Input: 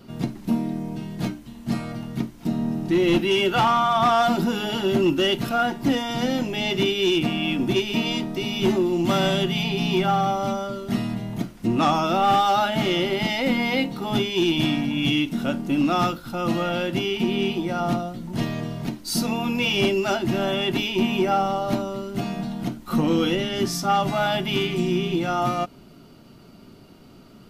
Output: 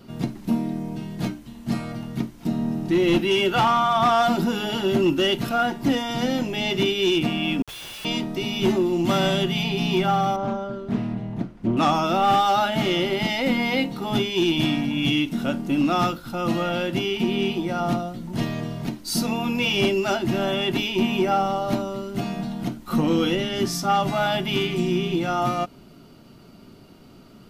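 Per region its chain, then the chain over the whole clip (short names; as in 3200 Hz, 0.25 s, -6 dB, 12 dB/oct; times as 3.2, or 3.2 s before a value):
7.62–8.05 inverse Chebyshev high-pass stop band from 790 Hz, stop band 70 dB + Schmitt trigger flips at -44 dBFS + frequency shift -68 Hz
10.36–11.77 LPF 1200 Hz 6 dB/oct + Doppler distortion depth 0.3 ms
whole clip: dry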